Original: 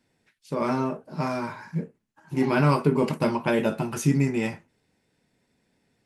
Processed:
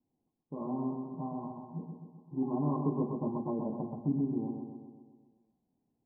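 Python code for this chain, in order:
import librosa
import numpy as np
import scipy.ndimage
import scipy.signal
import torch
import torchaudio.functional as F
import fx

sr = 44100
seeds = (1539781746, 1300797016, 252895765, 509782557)

p1 = scipy.signal.sosfilt(scipy.signal.cheby1(6, 9, 1100.0, 'lowpass', fs=sr, output='sos'), x)
p2 = fx.low_shelf(p1, sr, hz=120.0, db=6.0)
p3 = p2 + fx.echo_feedback(p2, sr, ms=129, feedback_pct=58, wet_db=-5.0, dry=0)
y = F.gain(torch.from_numpy(p3), -8.5).numpy()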